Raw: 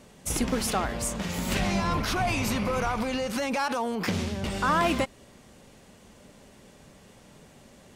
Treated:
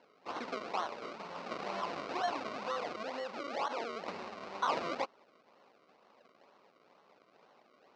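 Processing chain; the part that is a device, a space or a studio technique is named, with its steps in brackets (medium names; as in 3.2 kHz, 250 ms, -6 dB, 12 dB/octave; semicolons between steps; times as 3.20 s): 1.90–2.49 s: doubling 14 ms -5 dB; circuit-bent sampling toy (decimation with a swept rate 35×, swing 100% 2.1 Hz; cabinet simulation 520–4700 Hz, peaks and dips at 1.1 kHz +4 dB, 1.7 kHz -6 dB, 3.3 kHz -7 dB); trim -6 dB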